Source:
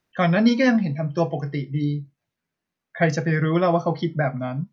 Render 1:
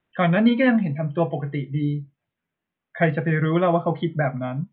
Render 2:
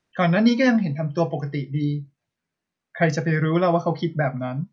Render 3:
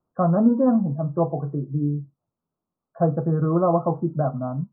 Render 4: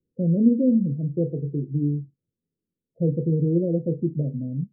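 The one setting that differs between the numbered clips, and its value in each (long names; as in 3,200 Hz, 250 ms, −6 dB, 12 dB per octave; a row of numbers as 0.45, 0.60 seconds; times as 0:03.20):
Butterworth low-pass, frequency: 3,600, 10,000, 1,300, 510 Hertz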